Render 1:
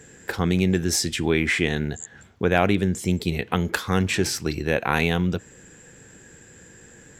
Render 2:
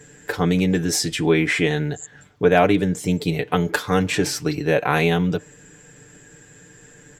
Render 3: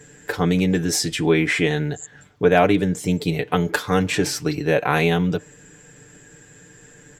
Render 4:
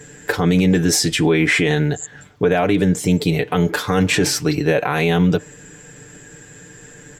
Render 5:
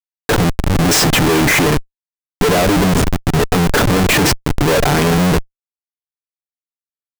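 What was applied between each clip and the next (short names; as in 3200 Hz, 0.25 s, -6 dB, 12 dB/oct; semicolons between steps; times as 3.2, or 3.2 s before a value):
comb 6.8 ms, depth 75%; dynamic EQ 530 Hz, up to +5 dB, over -34 dBFS, Q 0.76; gain -1 dB
nothing audible
limiter -12 dBFS, peak gain reduction 10.5 dB; gain +6 dB
step gate "xxxxx...xxxxx" 153 bpm -12 dB; Schmitt trigger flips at -22 dBFS; gain +7.5 dB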